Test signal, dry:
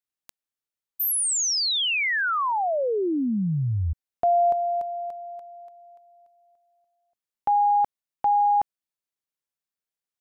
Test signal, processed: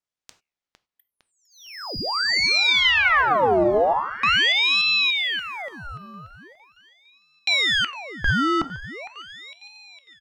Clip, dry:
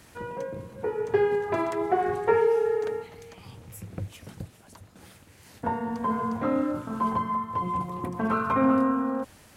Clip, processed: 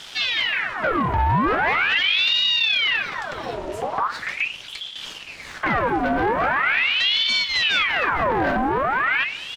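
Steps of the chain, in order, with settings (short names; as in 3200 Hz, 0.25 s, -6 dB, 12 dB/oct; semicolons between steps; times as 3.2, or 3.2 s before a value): treble ducked by the level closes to 770 Hz, closed at -22 dBFS; LPF 4400 Hz 12 dB/oct; de-hum 75.07 Hz, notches 5; dynamic EQ 220 Hz, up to +7 dB, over -40 dBFS, Q 0.86; in parallel at +3 dB: compressor, threshold -30 dBFS; on the sum: limiter -16.5 dBFS; sample leveller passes 2; on a send: feedback echo 0.457 s, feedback 53%, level -15.5 dB; on the sum: non-linear reverb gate 0.12 s falling, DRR 11.5 dB; ring modulator with a swept carrier 1900 Hz, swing 75%, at 0.41 Hz; gain +3 dB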